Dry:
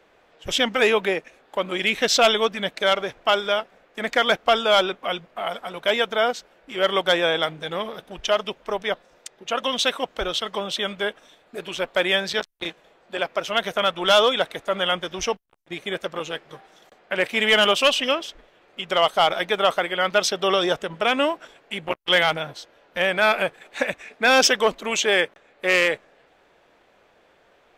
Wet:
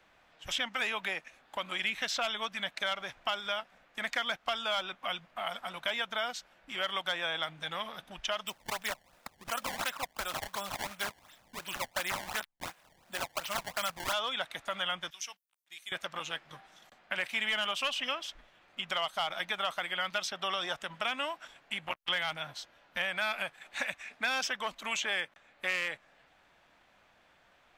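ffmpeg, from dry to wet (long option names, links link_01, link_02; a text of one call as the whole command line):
ffmpeg -i in.wav -filter_complex "[0:a]asplit=3[link_01][link_02][link_03];[link_01]afade=type=out:start_time=8.46:duration=0.02[link_04];[link_02]acrusher=samples=20:mix=1:aa=0.000001:lfo=1:lforange=32:lforate=2.8,afade=type=in:start_time=8.46:duration=0.02,afade=type=out:start_time=14.12:duration=0.02[link_05];[link_03]afade=type=in:start_time=14.12:duration=0.02[link_06];[link_04][link_05][link_06]amix=inputs=3:normalize=0,asettb=1/sr,asplit=3[link_07][link_08][link_09];[link_07]atrim=end=15.104[link_10];[link_08]atrim=start=15.1:end=15.92,asetpts=PTS-STARTPTS,afade=type=in:duration=0.004:curve=qsin,afade=type=out:start_time=0.816:duration=0.004:curve=qsin,aderivative[link_11];[link_09]atrim=start=15.916[link_12];[link_10][link_11]acrossfade=duration=0.004:curve1=hsin:curve2=qsin[link_13];[link_13][link_12]acrossfade=duration=0.004:curve1=qsin:curve2=hsin,equalizer=frequency=430:width_type=o:width=0.92:gain=-13,acrossover=split=510|2500[link_14][link_15][link_16];[link_14]acompressor=threshold=-47dB:ratio=4[link_17];[link_15]acompressor=threshold=-30dB:ratio=4[link_18];[link_16]acompressor=threshold=-34dB:ratio=4[link_19];[link_17][link_18][link_19]amix=inputs=3:normalize=0,volume=-3.5dB" out.wav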